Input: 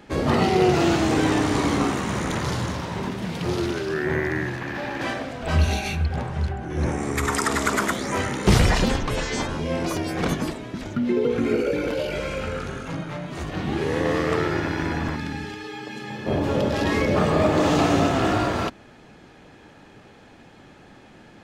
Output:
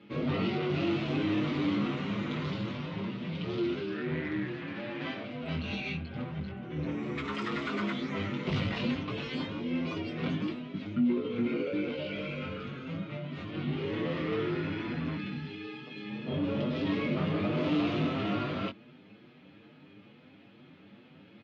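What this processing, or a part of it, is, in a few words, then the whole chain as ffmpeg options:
barber-pole flanger into a guitar amplifier: -filter_complex "[0:a]asplit=2[s0][s1];[s1]adelay=6.9,afreqshift=2.3[s2];[s0][s2]amix=inputs=2:normalize=1,asoftclip=type=tanh:threshold=0.0891,highpass=120,highpass=95,equalizer=f=400:t=q:w=4:g=-5,equalizer=f=960:t=q:w=4:g=3,equalizer=f=1700:t=q:w=4:g=-9,lowpass=f=3400:w=0.5412,lowpass=f=3400:w=1.3066,equalizer=f=850:w=1.4:g=-14.5,asplit=2[s3][s4];[s4]adelay=20,volume=0.501[s5];[s3][s5]amix=inputs=2:normalize=0"

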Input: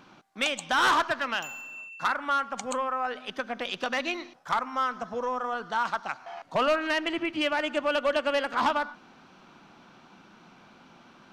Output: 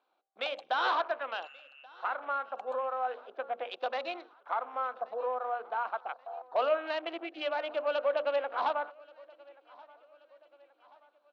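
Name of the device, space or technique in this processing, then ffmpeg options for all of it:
phone speaker on a table: -af "bandreject=f=60:t=h:w=6,bandreject=f=120:t=h:w=6,bandreject=f=180:t=h:w=6,bandreject=f=240:t=h:w=6,bandreject=f=300:t=h:w=6,bandreject=f=360:t=h:w=6,bandreject=f=420:t=h:w=6,bandreject=f=480:t=h:w=6,bandreject=f=540:t=h:w=6,bandreject=f=600:t=h:w=6,afwtdn=0.0126,bass=f=250:g=1,treble=f=4000:g=-12,highpass=f=370:w=0.5412,highpass=f=370:w=1.3066,equalizer=f=510:t=q:w=4:g=6,equalizer=f=720:t=q:w=4:g=8,equalizer=f=1900:t=q:w=4:g=-6,equalizer=f=4000:t=q:w=4:g=9,equalizer=f=6700:t=q:w=4:g=-4,lowpass=f=8200:w=0.5412,lowpass=f=8200:w=1.3066,aecho=1:1:1130|2260|3390:0.0631|0.0315|0.0158,volume=0.447"

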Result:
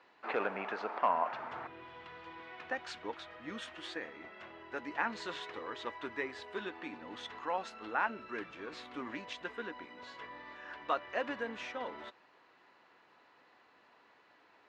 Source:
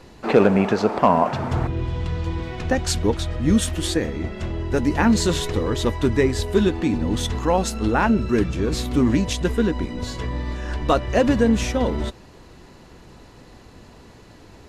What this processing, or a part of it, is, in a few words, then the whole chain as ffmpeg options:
phone in a pocket: -af "highpass=1300,lowpass=3100,lowshelf=f=230:g=8.5,equalizer=f=290:t=o:w=0.25:g=3.5,highshelf=f=2100:g=-11.5,volume=0.668"

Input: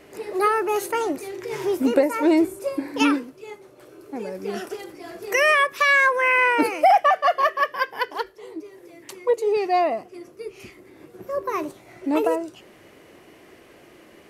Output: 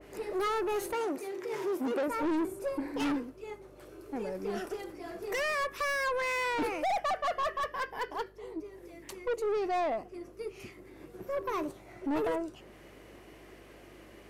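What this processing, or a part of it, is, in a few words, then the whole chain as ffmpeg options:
valve amplifier with mains hum: -filter_complex "[0:a]aeval=exprs='(tanh(15.8*val(0)+0.15)-tanh(0.15))/15.8':c=same,aeval=exprs='val(0)+0.00158*(sin(2*PI*50*n/s)+sin(2*PI*2*50*n/s)/2+sin(2*PI*3*50*n/s)/3+sin(2*PI*4*50*n/s)/4+sin(2*PI*5*50*n/s)/5)':c=same,asettb=1/sr,asplit=3[s0][s1][s2];[s0]atrim=end=0.934[s3];[s1]atrim=start=0.93:end=2.08,asetpts=PTS-STARTPTS,afade=t=in:d=0.004:c=qsin,afade=t=out:st=1.146:d=0.004:c=qsin,highpass=220[s4];[s2]atrim=start=2.076[s5];[s3][s4]acrossfade=d=0.004:c1=hsin:c2=qsin[s6];[s6][s5]acrossfade=d=0.004:c1=qsin:c2=hsin,adynamicequalizer=threshold=0.00224:dfrequency=1900:dqfactor=0.7:tfrequency=1900:tqfactor=0.7:attack=5:release=100:ratio=0.375:range=2.5:mode=cutabove:tftype=highshelf,volume=0.668"

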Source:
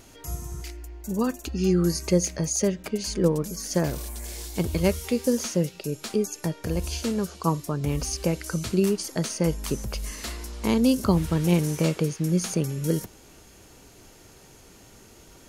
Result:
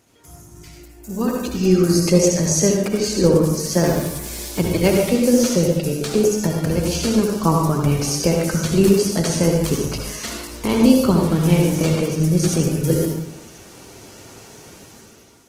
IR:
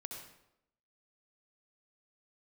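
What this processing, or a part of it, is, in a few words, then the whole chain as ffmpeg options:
far-field microphone of a smart speaker: -filter_complex "[1:a]atrim=start_sample=2205[s0];[0:a][s0]afir=irnorm=-1:irlink=0,highpass=88,dynaudnorm=f=490:g=5:m=6.68,volume=0.891" -ar 48000 -c:a libopus -b:a 16k

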